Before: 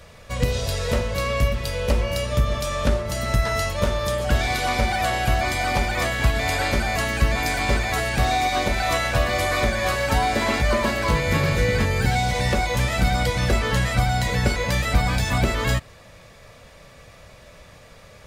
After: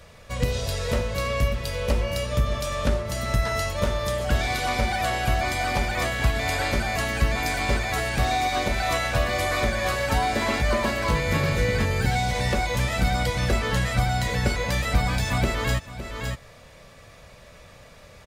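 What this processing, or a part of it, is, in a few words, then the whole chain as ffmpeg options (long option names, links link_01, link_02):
ducked delay: -filter_complex "[0:a]asplit=3[link_01][link_02][link_03];[link_02]adelay=562,volume=-5.5dB[link_04];[link_03]apad=whole_len=830125[link_05];[link_04][link_05]sidechaincompress=threshold=-32dB:ratio=10:attack=36:release=446[link_06];[link_01][link_06]amix=inputs=2:normalize=0,volume=-2.5dB"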